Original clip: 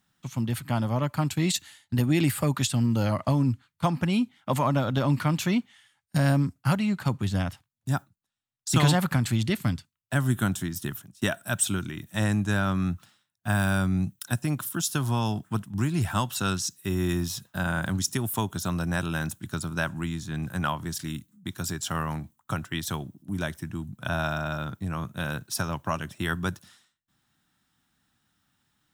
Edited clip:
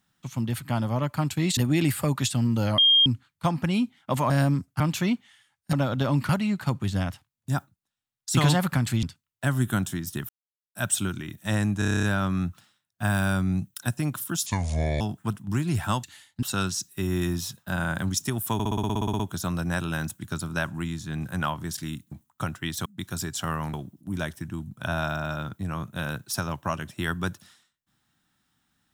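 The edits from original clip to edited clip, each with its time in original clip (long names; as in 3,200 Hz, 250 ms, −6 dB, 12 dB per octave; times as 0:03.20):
0:01.57–0:01.96: move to 0:16.30
0:03.17–0:03.45: beep over 3,220 Hz −14.5 dBFS
0:04.69–0:05.25: swap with 0:06.18–0:06.68
0:09.42–0:09.72: remove
0:10.98–0:11.44: silence
0:12.48: stutter 0.03 s, 9 plays
0:14.91–0:15.27: play speed 66%
0:18.41: stutter 0.06 s, 12 plays
0:22.21–0:22.95: move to 0:21.33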